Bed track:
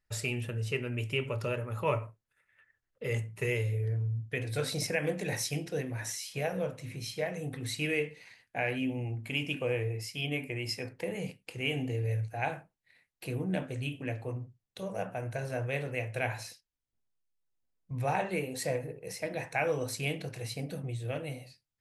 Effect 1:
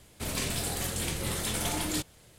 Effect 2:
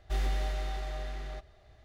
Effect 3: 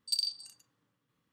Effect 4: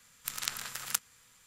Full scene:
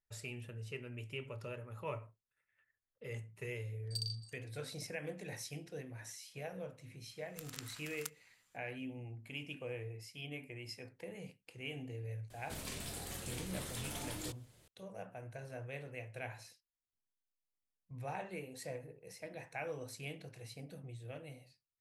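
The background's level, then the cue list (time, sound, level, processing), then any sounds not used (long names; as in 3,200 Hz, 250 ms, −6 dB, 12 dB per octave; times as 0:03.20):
bed track −12 dB
0:03.83: mix in 3 −10 dB
0:07.11: mix in 4 −14 dB
0:12.30: mix in 1 −12.5 dB + multiband upward and downward compressor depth 40%
not used: 2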